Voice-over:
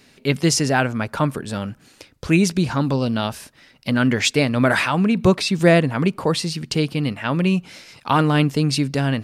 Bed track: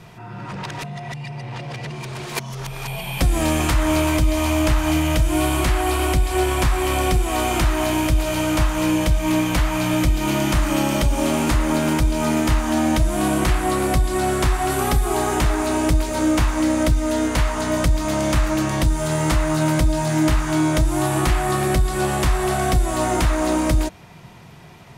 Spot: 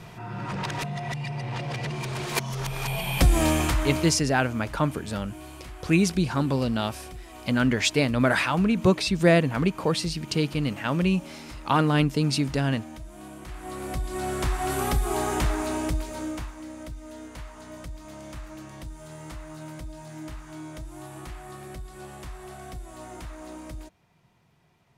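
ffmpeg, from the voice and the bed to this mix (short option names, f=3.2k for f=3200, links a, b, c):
-filter_complex "[0:a]adelay=3600,volume=-4.5dB[a];[1:a]volume=16.5dB,afade=t=out:st=3.28:d=0.93:silence=0.0749894,afade=t=in:st=13.45:d=1.31:silence=0.141254,afade=t=out:st=15.46:d=1.11:silence=0.177828[b];[a][b]amix=inputs=2:normalize=0"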